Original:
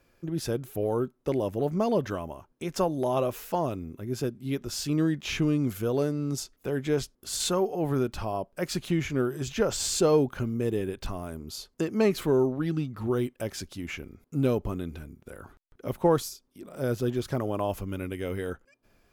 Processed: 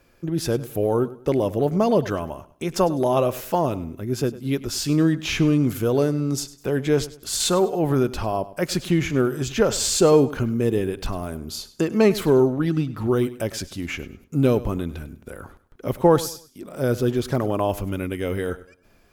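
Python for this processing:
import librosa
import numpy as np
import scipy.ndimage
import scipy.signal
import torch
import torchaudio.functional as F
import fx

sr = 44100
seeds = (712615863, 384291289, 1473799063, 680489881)

y = fx.echo_feedback(x, sr, ms=101, feedback_pct=30, wet_db=-17)
y = F.gain(torch.from_numpy(y), 6.5).numpy()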